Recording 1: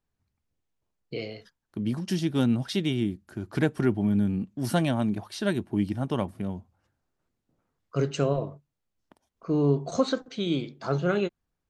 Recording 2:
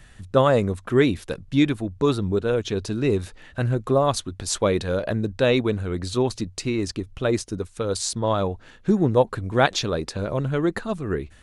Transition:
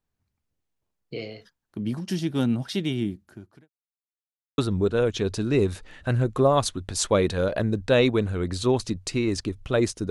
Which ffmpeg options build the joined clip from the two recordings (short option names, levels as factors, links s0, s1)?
-filter_complex "[0:a]apad=whole_dur=10.1,atrim=end=10.1,asplit=2[s0][s1];[s0]atrim=end=3.7,asetpts=PTS-STARTPTS,afade=t=out:st=3.21:d=0.49:c=qua[s2];[s1]atrim=start=3.7:end=4.58,asetpts=PTS-STARTPTS,volume=0[s3];[1:a]atrim=start=2.09:end=7.61,asetpts=PTS-STARTPTS,afade=t=in:d=0.004:c=hsin[s4];[s2][s3][s4]concat=n=3:v=0:a=1"